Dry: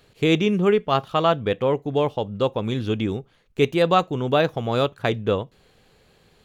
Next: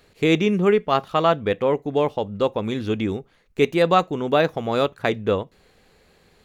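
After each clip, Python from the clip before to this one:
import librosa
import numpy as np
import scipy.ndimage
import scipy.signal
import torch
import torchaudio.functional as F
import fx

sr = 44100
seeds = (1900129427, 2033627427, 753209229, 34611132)

y = fx.graphic_eq_31(x, sr, hz=(125, 2000, 3150), db=(-9, 3, -4))
y = F.gain(torch.from_numpy(y), 1.0).numpy()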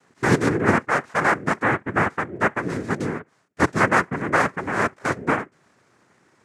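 y = fx.noise_vocoder(x, sr, seeds[0], bands=3)
y = fx.high_shelf_res(y, sr, hz=2500.0, db=-6.0, q=1.5)
y = F.gain(torch.from_numpy(y), -1.5).numpy()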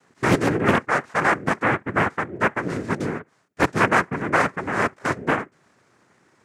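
y = fx.doppler_dist(x, sr, depth_ms=0.7)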